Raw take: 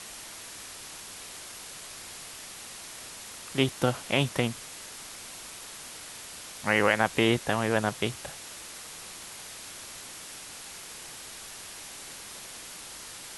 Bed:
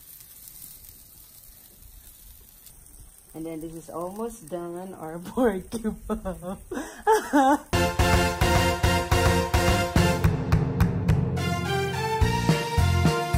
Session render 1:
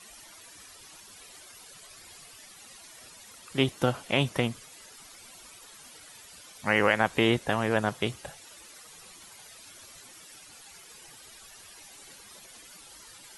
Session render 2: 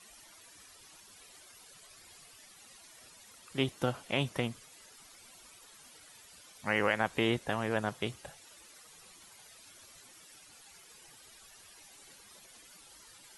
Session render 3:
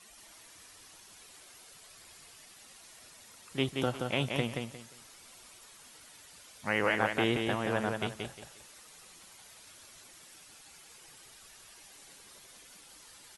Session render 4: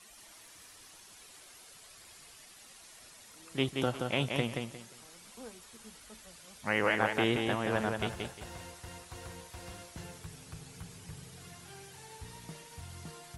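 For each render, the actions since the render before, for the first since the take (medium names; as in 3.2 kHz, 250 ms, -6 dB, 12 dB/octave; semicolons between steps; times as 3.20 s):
noise reduction 13 dB, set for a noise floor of -44 dBFS
trim -6 dB
feedback delay 177 ms, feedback 25%, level -4.5 dB
add bed -26 dB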